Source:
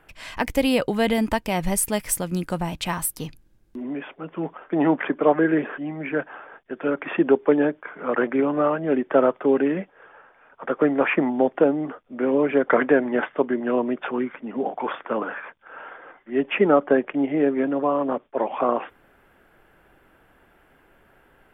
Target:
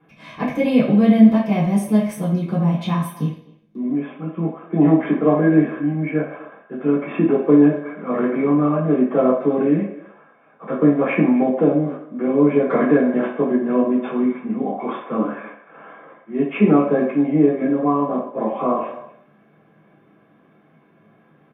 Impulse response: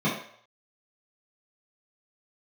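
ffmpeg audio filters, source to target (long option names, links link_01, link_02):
-filter_complex "[0:a]asplit=2[link_01][link_02];[link_02]asoftclip=type=tanh:threshold=-13dB,volume=-11dB[link_03];[link_01][link_03]amix=inputs=2:normalize=0,asplit=2[link_04][link_05];[link_05]adelay=250,highpass=300,lowpass=3400,asoftclip=type=hard:threshold=-12dB,volume=-18dB[link_06];[link_04][link_06]amix=inputs=2:normalize=0[link_07];[1:a]atrim=start_sample=2205[link_08];[link_07][link_08]afir=irnorm=-1:irlink=0,volume=-15.5dB"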